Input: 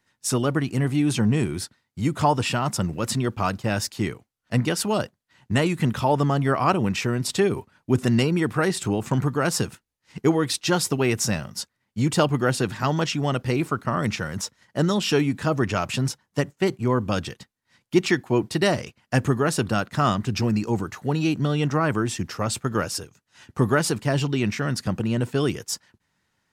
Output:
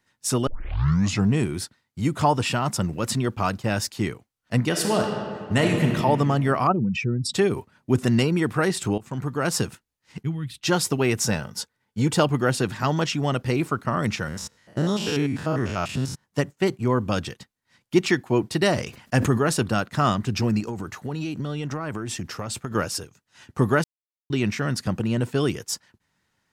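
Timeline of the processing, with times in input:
0.47 tape start 0.83 s
4.68–5.92 reverb throw, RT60 2.2 s, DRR 1.5 dB
6.67–7.34 spectral contrast raised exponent 2.2
8.98–9.55 fade in, from -17 dB
10.23–10.63 EQ curve 160 Hz 0 dB, 500 Hz -26 dB, 1800 Hz -14 dB, 3300 Hz -9 dB, 5600 Hz -24 dB, 11000 Hz -14 dB
11.26–12.17 small resonant body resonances 460/870/1500/3400 Hz, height 8 dB
14.28–16.24 stepped spectrum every 0.1 s
18.73–19.63 sustainer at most 100 dB/s
20.6–22.75 compressor 12:1, threshold -25 dBFS
23.84–24.3 mute

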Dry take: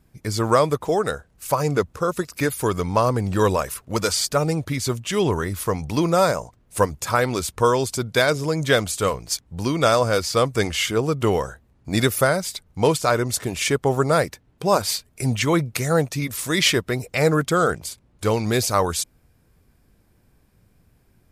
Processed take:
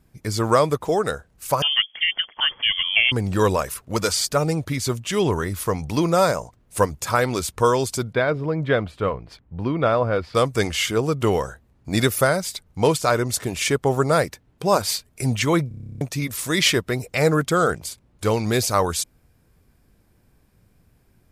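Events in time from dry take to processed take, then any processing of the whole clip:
1.62–3.12 inverted band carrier 3300 Hz
8.13–10.35 air absorption 460 m
15.68 stutter in place 0.03 s, 11 plays

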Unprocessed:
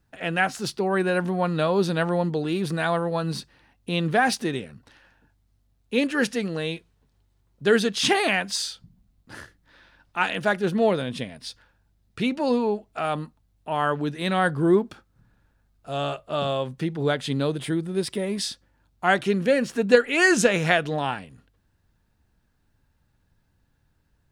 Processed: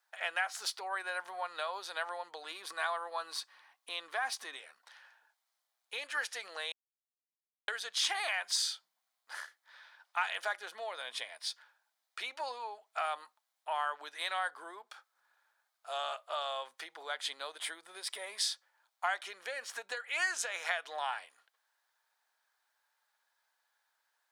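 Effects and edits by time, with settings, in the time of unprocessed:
2.51–4.57 small resonant body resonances 270/1100 Hz, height 10 dB
6.72–7.68 mute
whole clip: compressor 12:1, threshold -26 dBFS; HPF 760 Hz 24 dB/oct; notch 2700 Hz, Q 12; gain -1 dB

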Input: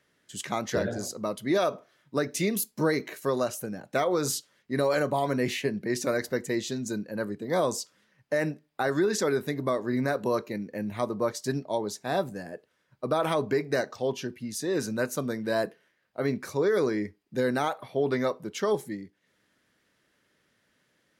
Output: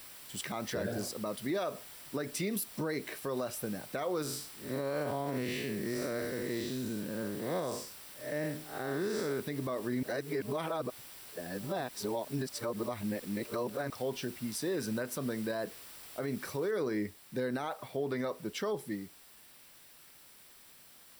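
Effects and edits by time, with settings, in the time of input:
4.22–9.4 time blur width 0.184 s
10.03–13.9 reverse
16.71 noise floor step -48 dB -55 dB
whole clip: notch 6600 Hz, Q 5.5; compressor, threshold -26 dBFS; limiter -23 dBFS; gain -2 dB

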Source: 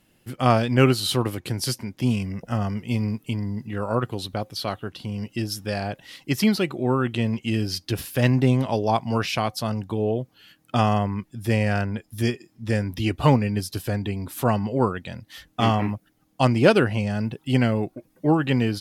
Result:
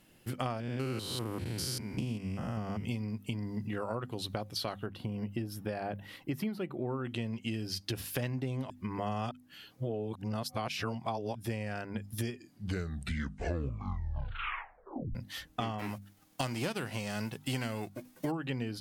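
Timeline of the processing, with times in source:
0.6–2.85 stepped spectrum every 0.2 s
4.86–7.05 bell 6000 Hz -14 dB 2.1 oct
8.7–11.35 reverse
12.32 tape stop 2.83 s
15.78–18.3 spectral whitening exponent 0.6
whole clip: notches 50/100/150/200/250 Hz; compressor 10:1, threshold -32 dBFS

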